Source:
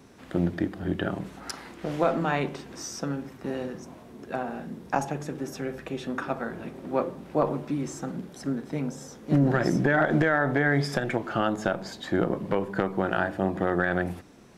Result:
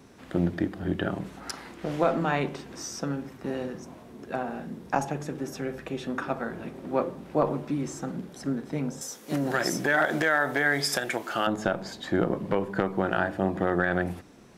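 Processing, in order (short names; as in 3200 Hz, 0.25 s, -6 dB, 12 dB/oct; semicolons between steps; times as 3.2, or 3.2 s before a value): 9.01–11.47 RIAA curve recording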